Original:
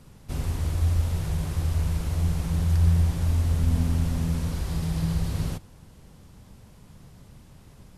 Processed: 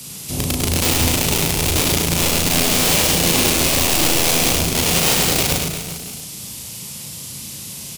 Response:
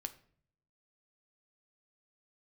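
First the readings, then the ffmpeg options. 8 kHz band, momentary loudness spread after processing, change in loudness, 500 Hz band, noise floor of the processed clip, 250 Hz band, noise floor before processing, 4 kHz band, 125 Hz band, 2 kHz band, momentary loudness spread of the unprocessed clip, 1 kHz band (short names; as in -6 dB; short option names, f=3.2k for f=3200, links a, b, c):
+26.5 dB, 16 LU, +10.5 dB, +18.5 dB, -33 dBFS, +9.5 dB, -51 dBFS, +26.0 dB, -0.5 dB, +22.5 dB, 8 LU, +18.0 dB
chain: -filter_complex "[0:a]highpass=130,highshelf=f=4.2k:g=4.5,acrossover=split=320|1000[a][b][c];[a]aeval=exprs='(mod(26.6*val(0)+1,2)-1)/26.6':c=same[d];[b]flanger=delay=19:depth=5:speed=2.6[e];[c]acompressor=threshold=-56dB:ratio=6[f];[d][e][f]amix=inputs=3:normalize=0,aexciter=amount=2.6:drive=8.7:freq=2.3k,asplit=2[g][h];[h]adelay=36,volume=-3.5dB[i];[g][i]amix=inputs=2:normalize=0,asplit=2[j][k];[k]aecho=0:1:100|215|347.2|499.3|674.2:0.631|0.398|0.251|0.158|0.1[l];[j][l]amix=inputs=2:normalize=0,alimiter=level_in=12dB:limit=-1dB:release=50:level=0:latency=1,volume=-2dB"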